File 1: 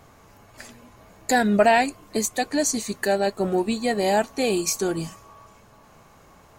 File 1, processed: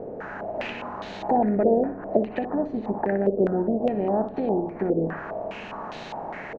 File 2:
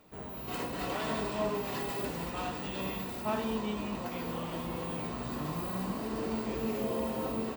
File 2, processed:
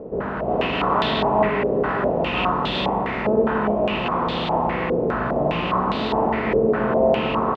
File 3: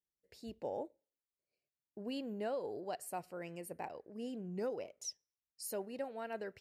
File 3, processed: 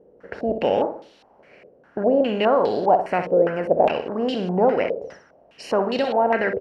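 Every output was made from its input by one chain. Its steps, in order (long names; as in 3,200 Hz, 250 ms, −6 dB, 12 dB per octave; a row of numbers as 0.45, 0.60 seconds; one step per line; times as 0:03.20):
compressor on every frequency bin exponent 0.6
treble cut that deepens with the level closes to 470 Hz, closed at −18 dBFS
on a send: repeating echo 61 ms, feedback 42%, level −10 dB
on the sum: low-pass on a step sequencer 4.9 Hz 480–3,700 Hz
normalise the peak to −6 dBFS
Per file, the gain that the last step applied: −3.5, +7.0, +15.0 decibels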